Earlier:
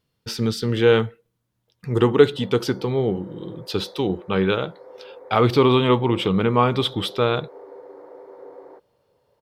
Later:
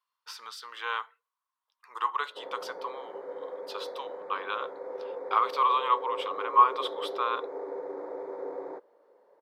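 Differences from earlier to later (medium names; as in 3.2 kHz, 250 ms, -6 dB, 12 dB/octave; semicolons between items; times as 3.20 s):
speech: add ladder high-pass 1 kHz, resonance 80%; background +4.5 dB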